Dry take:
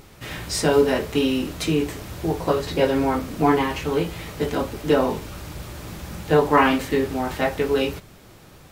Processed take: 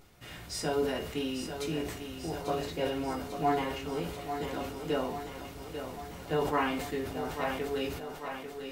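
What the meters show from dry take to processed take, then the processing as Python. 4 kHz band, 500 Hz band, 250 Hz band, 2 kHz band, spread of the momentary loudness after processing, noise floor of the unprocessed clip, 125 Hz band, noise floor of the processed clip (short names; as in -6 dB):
-9.5 dB, -11.5 dB, -12.5 dB, -11.0 dB, 10 LU, -47 dBFS, -12.0 dB, -46 dBFS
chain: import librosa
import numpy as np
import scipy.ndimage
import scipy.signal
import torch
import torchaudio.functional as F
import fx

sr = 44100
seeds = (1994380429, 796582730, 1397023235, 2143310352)

p1 = fx.comb_fb(x, sr, f0_hz=710.0, decay_s=0.33, harmonics='all', damping=0.0, mix_pct=80)
p2 = p1 + fx.echo_thinned(p1, sr, ms=843, feedback_pct=65, hz=170.0, wet_db=-8, dry=0)
y = fx.sustainer(p2, sr, db_per_s=57.0)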